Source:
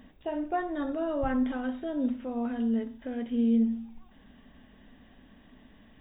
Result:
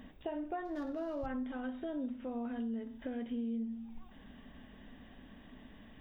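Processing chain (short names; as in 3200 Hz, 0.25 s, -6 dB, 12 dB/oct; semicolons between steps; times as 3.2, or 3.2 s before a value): 0.65–1.26 median filter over 15 samples; compressor 5:1, threshold -38 dBFS, peak gain reduction 15 dB; gain +1 dB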